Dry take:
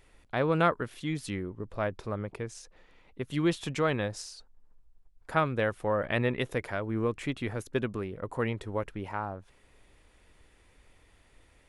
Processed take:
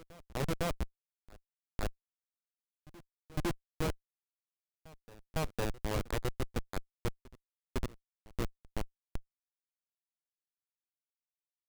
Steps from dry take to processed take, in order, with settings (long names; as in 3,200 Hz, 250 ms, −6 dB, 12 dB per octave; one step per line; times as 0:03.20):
low-pass that shuts in the quiet parts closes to 480 Hz, open at −22.5 dBFS
comparator with hysteresis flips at −23 dBFS
backwards echo 506 ms −21.5 dB
level +2 dB